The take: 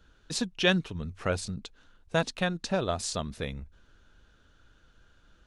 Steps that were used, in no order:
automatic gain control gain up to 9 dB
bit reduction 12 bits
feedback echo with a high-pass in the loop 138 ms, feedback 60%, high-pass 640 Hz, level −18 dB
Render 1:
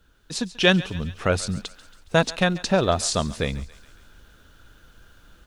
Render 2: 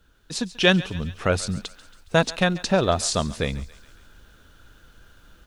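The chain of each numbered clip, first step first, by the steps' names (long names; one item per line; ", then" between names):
bit reduction, then feedback echo with a high-pass in the loop, then automatic gain control
feedback echo with a high-pass in the loop, then bit reduction, then automatic gain control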